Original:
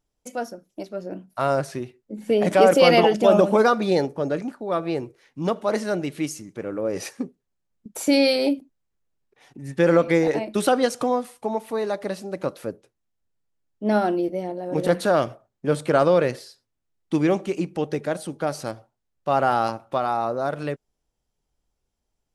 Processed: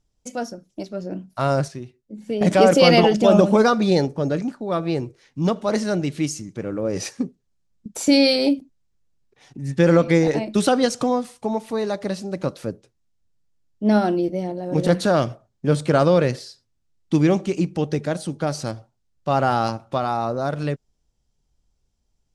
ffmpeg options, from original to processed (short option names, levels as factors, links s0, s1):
-filter_complex "[0:a]asplit=3[s0][s1][s2];[s0]atrim=end=1.682[s3];[s1]atrim=start=1.678:end=2.412,asetpts=PTS-STARTPTS,volume=0.422[s4];[s2]atrim=start=2.408[s5];[s3][s4]acrossfade=d=0.004:c1=hsin:c2=hsin[s6];[s6][s5]acrossfade=d=0.004:c1=hsin:c2=hsin,lowpass=6200,bass=f=250:g=9,treble=f=4000:g=10"